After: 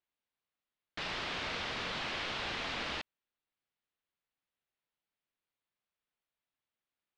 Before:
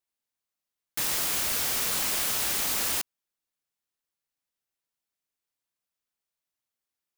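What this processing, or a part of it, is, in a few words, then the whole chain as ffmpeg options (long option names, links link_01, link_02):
synthesiser wavefolder: -af "aeval=exprs='0.0531*(abs(mod(val(0)/0.0531+3,4)-2)-1)':channel_layout=same,lowpass=frequency=3800:width=0.5412,lowpass=frequency=3800:width=1.3066"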